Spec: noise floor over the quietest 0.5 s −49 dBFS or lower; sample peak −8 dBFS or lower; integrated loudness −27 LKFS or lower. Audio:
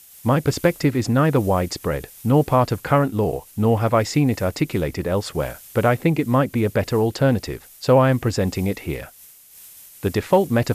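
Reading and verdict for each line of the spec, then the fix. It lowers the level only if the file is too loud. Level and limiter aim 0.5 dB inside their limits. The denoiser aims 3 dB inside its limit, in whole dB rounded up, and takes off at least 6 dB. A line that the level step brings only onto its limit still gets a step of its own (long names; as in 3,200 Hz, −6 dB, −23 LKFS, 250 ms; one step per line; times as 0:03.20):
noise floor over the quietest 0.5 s −47 dBFS: out of spec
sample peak −5.0 dBFS: out of spec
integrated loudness −20.5 LKFS: out of spec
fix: level −7 dB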